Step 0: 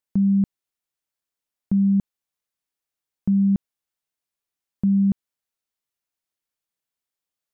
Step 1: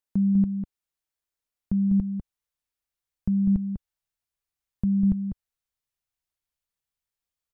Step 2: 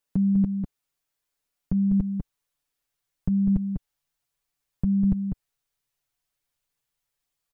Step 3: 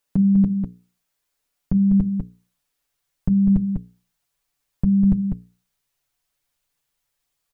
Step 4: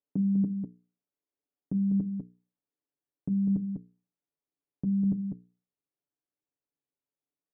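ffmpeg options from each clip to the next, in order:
ffmpeg -i in.wav -filter_complex "[0:a]asplit=2[link_01][link_02];[link_02]adelay=198.3,volume=-7dB,highshelf=frequency=4000:gain=-4.46[link_03];[link_01][link_03]amix=inputs=2:normalize=0,asubboost=boost=5:cutoff=100,volume=-3dB" out.wav
ffmpeg -i in.wav -filter_complex "[0:a]aecho=1:1:7:0.96,asplit=2[link_01][link_02];[link_02]alimiter=limit=-22.5dB:level=0:latency=1,volume=-1dB[link_03];[link_01][link_03]amix=inputs=2:normalize=0,volume=-2dB" out.wav
ffmpeg -i in.wav -af "bandreject=frequency=60:width_type=h:width=6,bandreject=frequency=120:width_type=h:width=6,bandreject=frequency=180:width_type=h:width=6,bandreject=frequency=240:width_type=h:width=6,bandreject=frequency=300:width_type=h:width=6,bandreject=frequency=360:width_type=h:width=6,bandreject=frequency=420:width_type=h:width=6,bandreject=frequency=480:width_type=h:width=6,volume=5.5dB" out.wav
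ffmpeg -i in.wav -af "bandpass=frequency=320:width_type=q:width=1.8:csg=0,volume=-3.5dB" out.wav

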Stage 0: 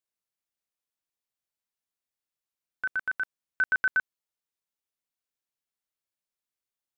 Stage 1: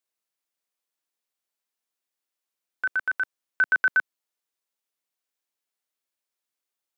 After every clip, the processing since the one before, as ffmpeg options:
ffmpeg -i in.wav -af "highpass=250,volume=4dB" out.wav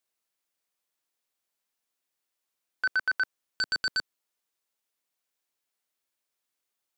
ffmpeg -i in.wav -af "aeval=exprs='0.211*sin(PI/2*2.24*val(0)/0.211)':channel_layout=same,volume=-8.5dB" out.wav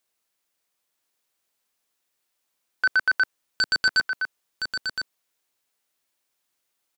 ffmpeg -i in.wav -af "aecho=1:1:1016:0.473,volume=6dB" out.wav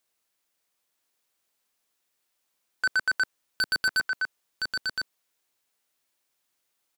ffmpeg -i in.wav -af "asoftclip=type=tanh:threshold=-20dB" out.wav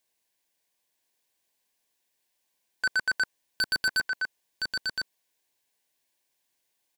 ffmpeg -i in.wav -af "asuperstop=centerf=1300:order=4:qfactor=4" out.wav

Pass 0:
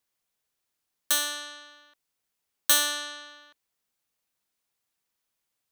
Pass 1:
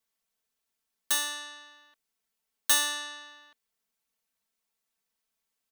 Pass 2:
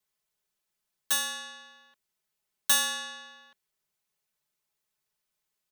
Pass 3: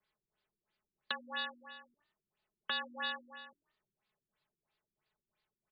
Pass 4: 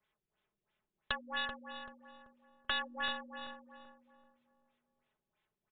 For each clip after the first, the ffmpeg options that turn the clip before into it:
ffmpeg -i in.wav -af "aecho=1:1:4.5:0.9,volume=-4.5dB" out.wav
ffmpeg -i in.wav -af "afreqshift=-52" out.wav
ffmpeg -i in.wav -filter_complex "[0:a]asplit=4[link_01][link_02][link_03][link_04];[link_02]adelay=95,afreqshift=43,volume=-21dB[link_05];[link_03]adelay=190,afreqshift=86,volume=-30.1dB[link_06];[link_04]adelay=285,afreqshift=129,volume=-39.2dB[link_07];[link_01][link_05][link_06][link_07]amix=inputs=4:normalize=0,acompressor=threshold=-31dB:ratio=16,afftfilt=real='re*lt(b*sr/1024,380*pow(5100/380,0.5+0.5*sin(2*PI*3*pts/sr)))':imag='im*lt(b*sr/1024,380*pow(5100/380,0.5+0.5*sin(2*PI*3*pts/sr)))':win_size=1024:overlap=0.75,volume=4.5dB" out.wav
ffmpeg -i in.wav -filter_complex "[0:a]aeval=exprs='0.075*(cos(1*acos(clip(val(0)/0.075,-1,1)))-cos(1*PI/2))+0.0237*(cos(2*acos(clip(val(0)/0.075,-1,1)))-cos(2*PI/2))':channel_layout=same,asplit=2[link_01][link_02];[link_02]adelay=385,lowpass=frequency=1300:poles=1,volume=-5.5dB,asplit=2[link_03][link_04];[link_04]adelay=385,lowpass=frequency=1300:poles=1,volume=0.38,asplit=2[link_05][link_06];[link_06]adelay=385,lowpass=frequency=1300:poles=1,volume=0.38,asplit=2[link_07][link_08];[link_08]adelay=385,lowpass=frequency=1300:poles=1,volume=0.38,asplit=2[link_09][link_10];[link_10]adelay=385,lowpass=frequency=1300:poles=1,volume=0.38[link_11];[link_03][link_05][link_07][link_09][link_11]amix=inputs=5:normalize=0[link_12];[link_01][link_12]amix=inputs=2:normalize=0,aresample=8000,aresample=44100,volume=2dB" out.wav

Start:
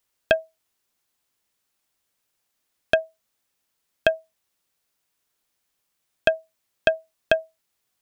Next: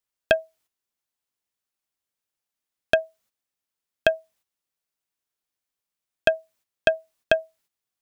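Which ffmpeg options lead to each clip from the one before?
ffmpeg -i in.wav -af "agate=range=-11dB:threshold=-59dB:ratio=16:detection=peak" out.wav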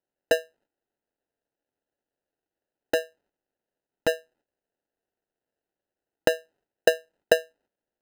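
ffmpeg -i in.wav -af "acrusher=samples=39:mix=1:aa=0.000001,bass=frequency=250:gain=-12,treble=frequency=4000:gain=-6" out.wav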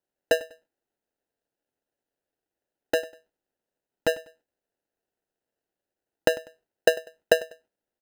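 ffmpeg -i in.wav -af "aecho=1:1:98|196:0.106|0.0318" out.wav

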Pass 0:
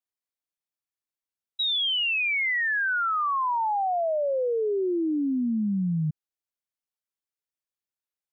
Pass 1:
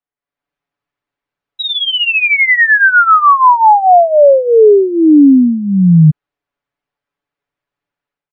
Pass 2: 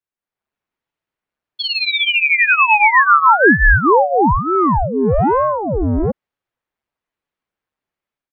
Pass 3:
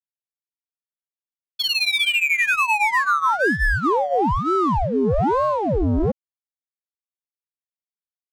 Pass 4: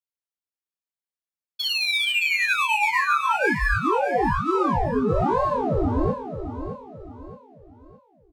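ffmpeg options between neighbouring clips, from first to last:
ffmpeg -i in.wav -af "lowpass=2000,aecho=1:1:7:0.68,dynaudnorm=framelen=140:gausssize=5:maxgain=11.5dB,volume=5.5dB" out.wav
ffmpeg -i in.wav -filter_complex "[0:a]acrossover=split=330|650[link_01][link_02][link_03];[link_01]asoftclip=type=tanh:threshold=-13dB[link_04];[link_02]alimiter=limit=-16.5dB:level=0:latency=1:release=216[link_05];[link_04][link_05][link_03]amix=inputs=3:normalize=0,aeval=exprs='val(0)*sin(2*PI*460*n/s+460*0.85/1.1*sin(2*PI*1.1*n/s))':channel_layout=same" out.wav
ffmpeg -i in.wav -af "acompressor=threshold=-16dB:ratio=6,aeval=exprs='sgn(val(0))*max(abs(val(0))-0.00422,0)':channel_layout=same,adynamicsmooth=sensitivity=5.5:basefreq=2600" out.wav
ffmpeg -i in.wav -af "flanger=delay=19:depth=7:speed=0.26,aecho=1:1:617|1234|1851|2468:0.335|0.127|0.0484|0.0184" out.wav

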